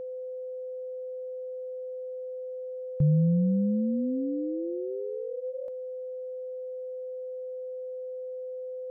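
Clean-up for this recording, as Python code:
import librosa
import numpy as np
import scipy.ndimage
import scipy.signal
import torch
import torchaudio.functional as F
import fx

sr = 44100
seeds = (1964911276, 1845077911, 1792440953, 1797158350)

y = fx.notch(x, sr, hz=510.0, q=30.0)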